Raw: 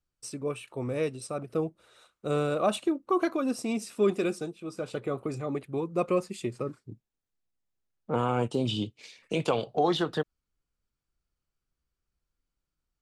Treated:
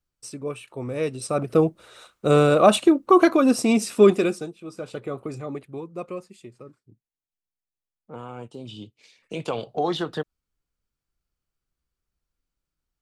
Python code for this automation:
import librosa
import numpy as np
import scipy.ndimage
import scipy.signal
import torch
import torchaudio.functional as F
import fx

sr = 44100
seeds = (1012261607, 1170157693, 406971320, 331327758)

y = fx.gain(x, sr, db=fx.line((0.93, 1.5), (1.4, 11.0), (4.01, 11.0), (4.53, 0.5), (5.43, 0.5), (6.42, -10.5), (8.62, -10.5), (9.7, 0.5)))